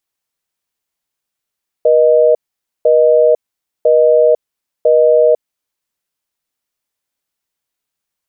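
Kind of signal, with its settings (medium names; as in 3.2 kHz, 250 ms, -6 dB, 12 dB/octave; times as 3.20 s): call progress tone busy tone, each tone -9 dBFS 3.76 s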